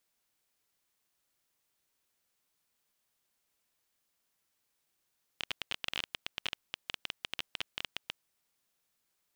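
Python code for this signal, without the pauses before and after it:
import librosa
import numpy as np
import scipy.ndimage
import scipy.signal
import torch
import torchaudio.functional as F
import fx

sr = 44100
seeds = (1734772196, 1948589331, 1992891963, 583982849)

y = fx.geiger_clicks(sr, seeds[0], length_s=2.9, per_s=14.0, level_db=-16.5)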